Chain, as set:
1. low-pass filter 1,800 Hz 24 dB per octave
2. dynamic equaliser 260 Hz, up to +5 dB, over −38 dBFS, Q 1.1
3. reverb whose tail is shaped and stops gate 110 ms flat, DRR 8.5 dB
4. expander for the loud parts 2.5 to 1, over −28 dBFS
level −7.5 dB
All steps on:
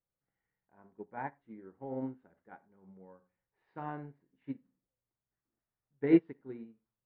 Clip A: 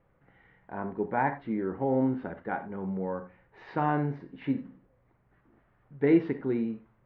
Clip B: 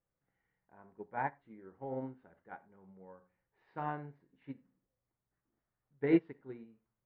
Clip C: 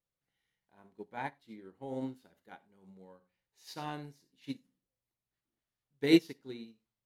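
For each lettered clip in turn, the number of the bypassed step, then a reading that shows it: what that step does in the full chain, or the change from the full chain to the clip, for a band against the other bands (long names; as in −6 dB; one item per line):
4, 250 Hz band −6.0 dB
2, change in integrated loudness −2.0 LU
1, 2 kHz band +6.0 dB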